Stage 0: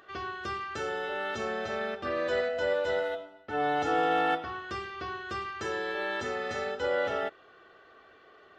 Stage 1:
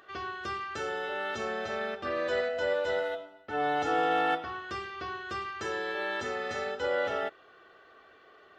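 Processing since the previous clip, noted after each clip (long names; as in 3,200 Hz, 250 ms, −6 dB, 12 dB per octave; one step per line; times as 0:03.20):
low-shelf EQ 330 Hz −3 dB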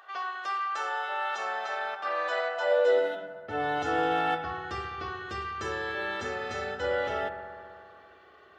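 bucket-brigade delay 67 ms, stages 1,024, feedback 82%, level −11 dB
high-pass filter sweep 820 Hz → 67 Hz, 0:02.61–0:03.69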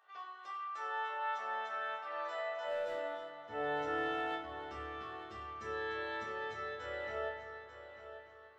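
hard clipping −20 dBFS, distortion −20 dB
resonators tuned to a chord D2 fifth, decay 0.36 s
echo machine with several playback heads 297 ms, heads first and third, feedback 42%, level −12 dB
level −3 dB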